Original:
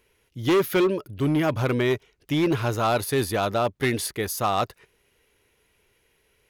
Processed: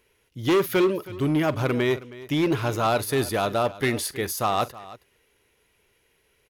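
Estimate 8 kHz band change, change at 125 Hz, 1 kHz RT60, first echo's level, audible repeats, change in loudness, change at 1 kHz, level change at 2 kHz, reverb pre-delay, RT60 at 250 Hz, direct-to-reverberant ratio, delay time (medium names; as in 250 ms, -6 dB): 0.0 dB, -1.0 dB, no reverb, -18.5 dB, 2, 0.0 dB, 0.0 dB, 0.0 dB, no reverb, no reverb, no reverb, 45 ms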